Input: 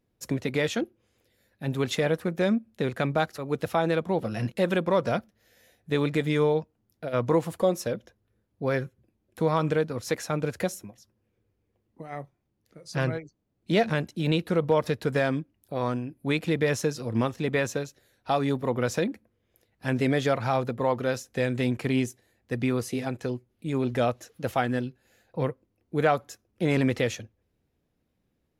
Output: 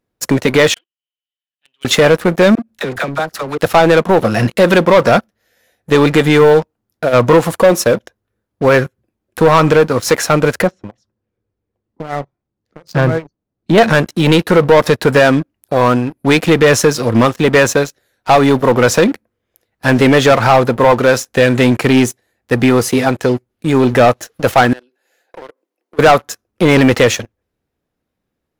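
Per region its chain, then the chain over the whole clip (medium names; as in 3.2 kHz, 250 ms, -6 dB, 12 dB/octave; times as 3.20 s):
0.74–1.85 s: companding laws mixed up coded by A + band-pass filter 3 kHz, Q 19
2.55–3.58 s: phase dispersion lows, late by 42 ms, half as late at 620 Hz + compression 3:1, threshold -38 dBFS
10.62–13.78 s: low-pass 4.4 kHz + low-pass that closes with the level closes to 2.6 kHz, closed at -26 dBFS + FFT filter 150 Hz 0 dB, 2.5 kHz -7 dB, 11 kHz +1 dB
24.73–25.99 s: compression 8:1, threshold -42 dBFS + high-pass 320 Hz 24 dB/octave + peaking EQ 1.3 kHz -3.5 dB 0.41 oct
whole clip: FFT filter 140 Hz 0 dB, 1.4 kHz +8 dB, 2.4 kHz +4 dB; waveshaping leveller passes 3; trim +3.5 dB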